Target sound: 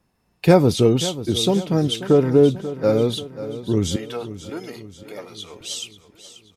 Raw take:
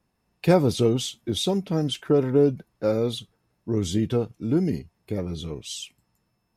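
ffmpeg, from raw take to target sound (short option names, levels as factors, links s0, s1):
-filter_complex "[0:a]asettb=1/sr,asplit=3[s0][s1][s2];[s0]atrim=end=3.964[s3];[s1]atrim=start=3.96:end=5.61,asetpts=PTS-STARTPTS,afade=t=in:d=0.004:c=qsin,afade=t=out:st=1.646:d=0.004:c=qsin,highpass=780[s4];[s2]atrim=start=5.606[s5];[s3][s4]acrossfade=d=0.004:c1=hsin:c2=qsin[s6];[s6][s5]acrossfade=d=0.004:c1=qsin:c2=hsin,aecho=1:1:536|1072|1608|2144|2680:0.2|0.102|0.0519|0.0265|0.0135,volume=1.78"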